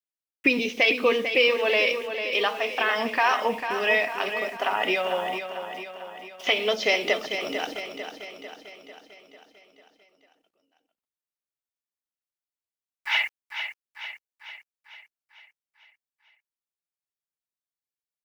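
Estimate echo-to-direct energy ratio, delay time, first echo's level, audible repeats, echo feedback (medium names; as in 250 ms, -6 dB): -7.0 dB, 447 ms, -8.5 dB, 6, 55%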